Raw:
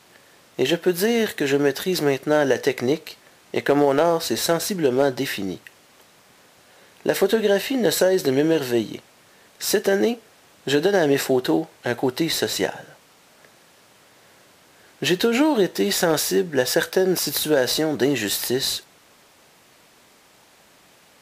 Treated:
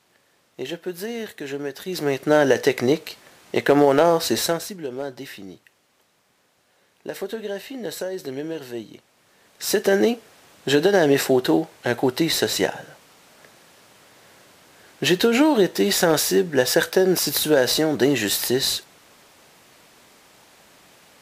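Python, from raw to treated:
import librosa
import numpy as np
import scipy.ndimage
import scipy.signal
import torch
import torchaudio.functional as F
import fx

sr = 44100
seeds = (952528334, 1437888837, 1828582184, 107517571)

y = fx.gain(x, sr, db=fx.line((1.74, -10.0), (2.29, 2.0), (4.38, 2.0), (4.78, -11.0), (8.85, -11.0), (9.93, 1.5)))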